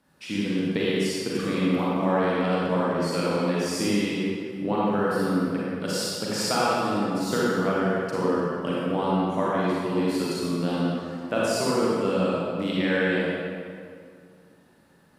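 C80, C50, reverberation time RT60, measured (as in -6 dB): -3.0 dB, -5.5 dB, 2.2 s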